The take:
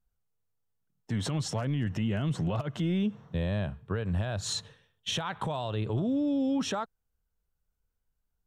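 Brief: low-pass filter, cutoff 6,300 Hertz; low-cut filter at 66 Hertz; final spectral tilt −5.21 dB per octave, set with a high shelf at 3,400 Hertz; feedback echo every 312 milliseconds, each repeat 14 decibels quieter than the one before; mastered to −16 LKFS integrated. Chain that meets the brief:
high-pass filter 66 Hz
low-pass filter 6,300 Hz
high-shelf EQ 3,400 Hz +6.5 dB
repeating echo 312 ms, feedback 20%, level −14 dB
level +15 dB

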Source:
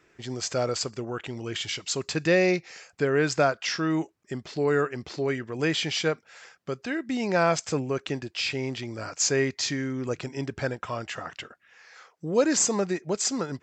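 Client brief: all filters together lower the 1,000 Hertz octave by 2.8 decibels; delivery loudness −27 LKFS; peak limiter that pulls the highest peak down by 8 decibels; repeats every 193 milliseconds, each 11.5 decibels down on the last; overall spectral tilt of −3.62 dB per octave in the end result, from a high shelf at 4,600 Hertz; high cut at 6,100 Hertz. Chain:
low-pass filter 6,100 Hz
parametric band 1,000 Hz −5 dB
high-shelf EQ 4,600 Hz +9 dB
brickwall limiter −18.5 dBFS
repeating echo 193 ms, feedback 27%, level −11.5 dB
level +2.5 dB

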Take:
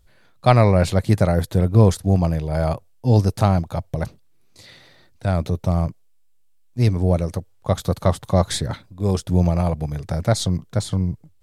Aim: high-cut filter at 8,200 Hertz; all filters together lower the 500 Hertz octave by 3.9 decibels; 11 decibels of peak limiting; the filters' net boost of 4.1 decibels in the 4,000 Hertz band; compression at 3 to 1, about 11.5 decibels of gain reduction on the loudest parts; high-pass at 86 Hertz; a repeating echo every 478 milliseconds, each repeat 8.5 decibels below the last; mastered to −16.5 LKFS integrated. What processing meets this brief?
high-pass filter 86 Hz
low-pass filter 8,200 Hz
parametric band 500 Hz −5 dB
parametric band 4,000 Hz +5 dB
downward compressor 3 to 1, threshold −26 dBFS
brickwall limiter −21 dBFS
repeating echo 478 ms, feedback 38%, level −8.5 dB
level +16.5 dB

